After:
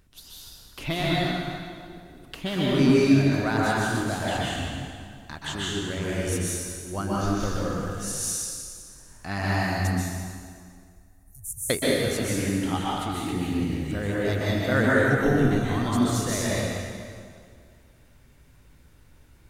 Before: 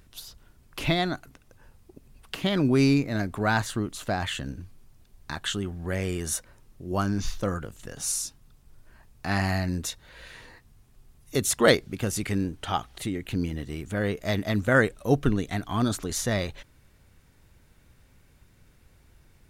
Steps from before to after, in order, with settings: 9.87–11.7 inverse Chebyshev band-stop 220–3900 Hz, stop band 50 dB; plate-style reverb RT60 2.1 s, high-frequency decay 0.85×, pre-delay 0.115 s, DRR -6.5 dB; gain -5 dB

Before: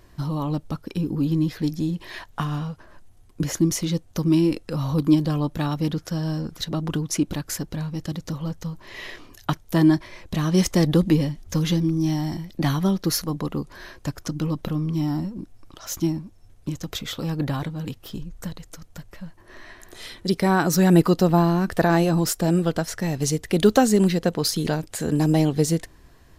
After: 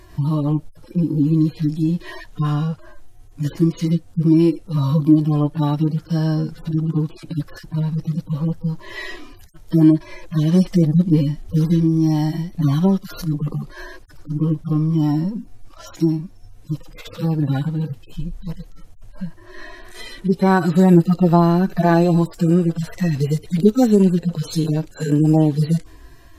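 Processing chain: median-filter separation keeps harmonic; in parallel at +2 dB: compressor, threshold -28 dBFS, peak gain reduction 16 dB; on the sum: gain +2.5 dB

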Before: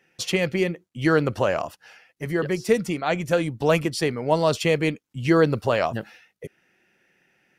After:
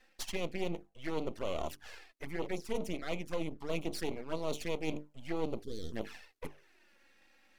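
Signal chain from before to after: notches 50/100/150/200/250/300/350/400/450 Hz; half-wave rectifier; reverse; compressor 4:1, threshold -35 dBFS, peak gain reduction 17 dB; reverse; spectral gain 5.64–5.93, 500–3100 Hz -25 dB; in parallel at -11.5 dB: soft clip -32.5 dBFS, distortion -11 dB; on the sum: envelope flanger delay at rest 4 ms, full sweep at -32 dBFS; bell 120 Hz -12.5 dB 0.78 oct; gain +3 dB

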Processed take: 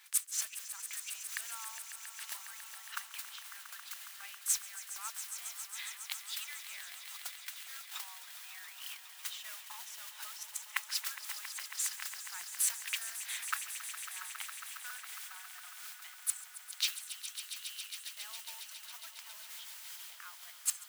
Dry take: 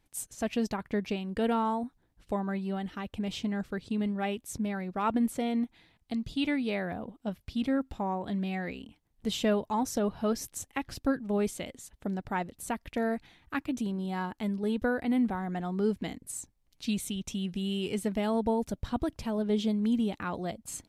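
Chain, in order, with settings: flipped gate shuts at -28 dBFS, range -29 dB; in parallel at -3 dB: negative-ratio compressor -54 dBFS; on the sum: modulation noise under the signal 11 dB; inverse Chebyshev high-pass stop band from 280 Hz, stop band 70 dB; swelling echo 0.137 s, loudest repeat 5, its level -13.5 dB; gain +11.5 dB

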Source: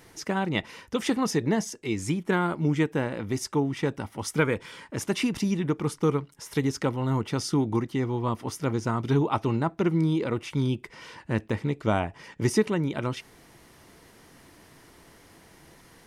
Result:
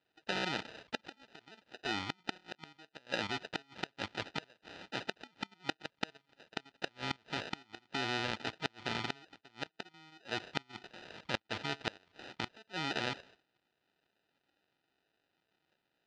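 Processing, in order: level quantiser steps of 12 dB; low-pass opened by the level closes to 800 Hz, open at -25.5 dBFS; gate -58 dBFS, range -20 dB; 4.55–6.7 HPF 110 Hz 24 dB/oct; flipped gate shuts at -23 dBFS, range -33 dB; sample-and-hold 40×; LPF 4000 Hz 24 dB/oct; tilt +4.5 dB/oct; gain +5 dB

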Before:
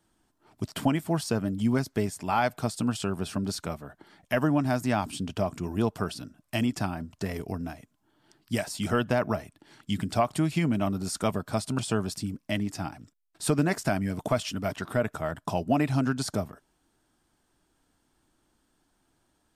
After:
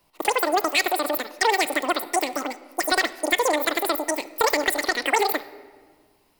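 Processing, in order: high shelf 3800 Hz +10.5 dB; wide varispeed 3.06×; shoebox room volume 1800 m³, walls mixed, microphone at 0.39 m; gain +4.5 dB

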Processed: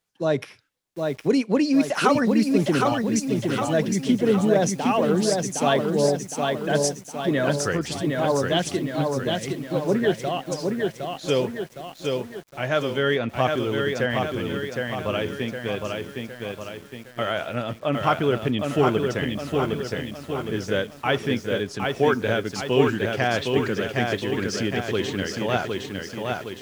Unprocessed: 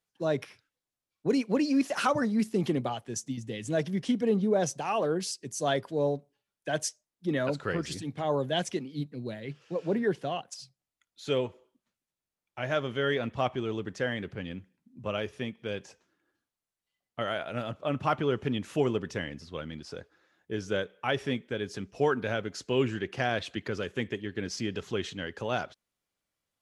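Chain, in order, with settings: lo-fi delay 0.762 s, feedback 55%, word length 9-bit, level -3.5 dB; gain +6 dB

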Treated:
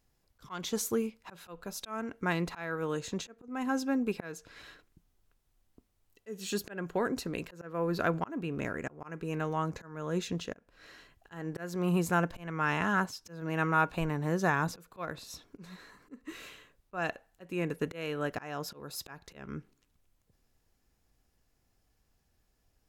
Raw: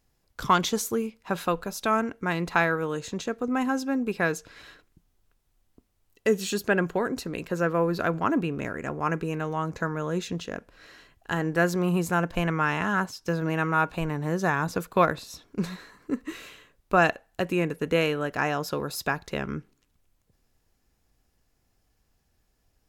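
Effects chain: auto swell 0.349 s; gain -3 dB

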